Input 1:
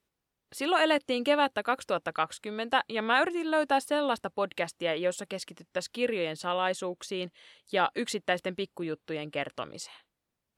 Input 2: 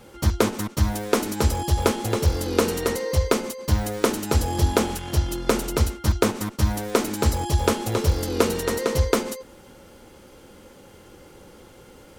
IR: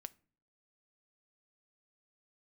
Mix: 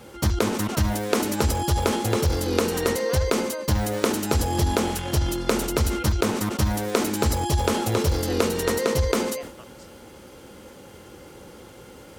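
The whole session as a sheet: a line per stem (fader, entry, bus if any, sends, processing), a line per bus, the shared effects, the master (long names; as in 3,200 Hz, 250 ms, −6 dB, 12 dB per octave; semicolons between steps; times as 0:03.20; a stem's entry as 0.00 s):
−12.0 dB, 0.00 s, no send, no processing
+3.0 dB, 0.00 s, no send, high-pass filter 48 Hz; level that may fall only so fast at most 87 dB per second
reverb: not used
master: downward compressor, threshold −18 dBFS, peak gain reduction 8.5 dB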